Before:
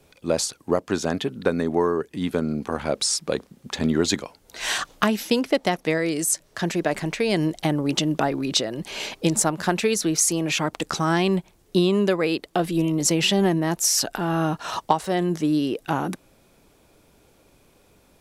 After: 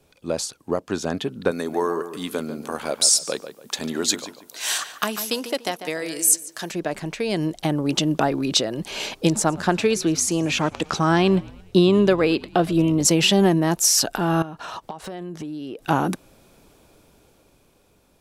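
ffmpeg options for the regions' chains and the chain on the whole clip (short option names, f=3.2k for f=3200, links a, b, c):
-filter_complex "[0:a]asettb=1/sr,asplit=3[a][b][c];[a]atrim=end=1.514[d];[b]atrim=start=1.51:end=6.71,asetpts=PTS-STARTPTS,afade=t=in:d=0.004:c=qsin,afade=t=out:st=5.196:d=0.004:c=qsin,highpass=f=410:p=1,aemphasis=mode=production:type=50kf,asplit=2[e][f];[f]adelay=145,lowpass=f=2.4k:p=1,volume=-9.5dB,asplit=2[g][h];[h]adelay=145,lowpass=f=2.4k:p=1,volume=0.32,asplit=2[i][j];[j]adelay=145,lowpass=f=2.4k:p=1,volume=0.32,asplit=2[k][l];[l]adelay=145,lowpass=f=2.4k:p=1,volume=0.32[m];[e][g][i][k][m]amix=inputs=5:normalize=0,atrim=end_sample=229320[n];[c]atrim=start=6.706[o];[d][n]acrossfade=d=0.004:c1=hsin:c2=qsin[p];[p][o]acrossfade=d=0.004:c1=qsin:c2=hsin,asettb=1/sr,asplit=3[q][r][s];[q]atrim=end=9.324[t];[r]atrim=start=9.32:end=13.05,asetpts=PTS-STARTPTS,afade=t=in:d=0.004:c=qsin,afade=t=out:st=3.726:d=0.004:c=qsin,highshelf=f=7.5k:g=-10,asplit=5[u][v][w][x][y];[v]adelay=111,afreqshift=-67,volume=-22.5dB[z];[w]adelay=222,afreqshift=-134,volume=-27.4dB[aa];[x]adelay=333,afreqshift=-201,volume=-32.3dB[ab];[y]adelay=444,afreqshift=-268,volume=-37.1dB[ac];[u][z][aa][ab][ac]amix=inputs=5:normalize=0,atrim=end_sample=164493[ad];[s]atrim=start=13.046[ae];[t][ad]acrossfade=d=0.004:c1=hsin:c2=qsin[af];[af][ae]acrossfade=d=0.004:c1=qsin:c2=hsin,asettb=1/sr,asplit=3[ag][ah][ai];[ag]atrim=end=14.424[aj];[ah]atrim=start=14.42:end=15.83,asetpts=PTS-STARTPTS,afade=t=in:d=0.004:c=qsin,afade=t=out:st=1.406:d=0.004:c=qsin,bass=f=250:g=-1,treble=f=4k:g=-6,acompressor=threshold=-33dB:ratio=10:attack=3.2:release=140:knee=1:detection=peak[ak];[ai]atrim=start=15.826[al];[aj][ak]acrossfade=d=0.004:c1=hsin:c2=qsin[am];[am][al]acrossfade=d=0.004:c1=qsin:c2=hsin,equalizer=f=2k:t=o:w=0.32:g=-3.5,dynaudnorm=f=150:g=17:m=11.5dB,volume=-3dB"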